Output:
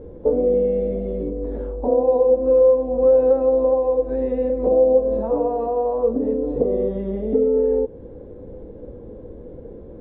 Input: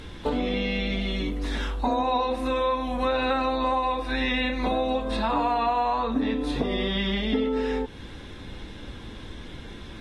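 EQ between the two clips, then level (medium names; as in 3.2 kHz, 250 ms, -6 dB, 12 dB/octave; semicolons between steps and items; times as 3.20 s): resonant low-pass 500 Hz, resonance Q 6.1; -1.0 dB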